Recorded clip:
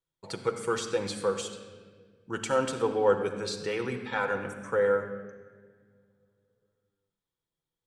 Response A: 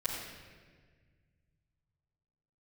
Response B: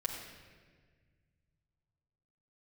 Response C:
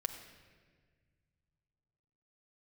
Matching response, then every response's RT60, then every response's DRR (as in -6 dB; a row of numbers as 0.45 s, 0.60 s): C; 1.6 s, 1.6 s, 1.6 s; -12.5 dB, -2.5 dB, 4.0 dB